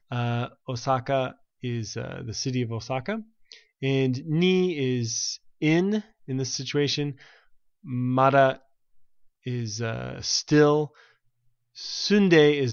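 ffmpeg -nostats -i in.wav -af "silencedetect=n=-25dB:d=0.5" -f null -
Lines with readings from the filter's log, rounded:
silence_start: 3.16
silence_end: 3.83 | silence_duration: 0.67
silence_start: 7.10
silence_end: 7.92 | silence_duration: 0.82
silence_start: 8.53
silence_end: 9.47 | silence_duration: 0.94
silence_start: 10.84
silence_end: 11.86 | silence_duration: 1.02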